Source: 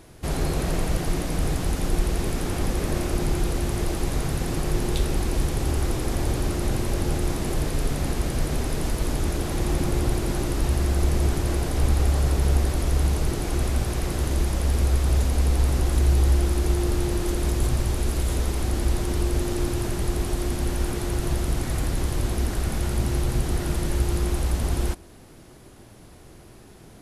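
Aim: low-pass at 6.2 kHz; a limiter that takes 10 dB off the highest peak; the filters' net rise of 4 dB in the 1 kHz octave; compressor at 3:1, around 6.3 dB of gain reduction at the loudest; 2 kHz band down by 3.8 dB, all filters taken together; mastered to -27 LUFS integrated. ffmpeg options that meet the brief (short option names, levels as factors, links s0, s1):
-af "lowpass=6200,equalizer=f=1000:t=o:g=7,equalizer=f=2000:t=o:g=-7.5,acompressor=threshold=0.0631:ratio=3,volume=2.66,alimiter=limit=0.141:level=0:latency=1"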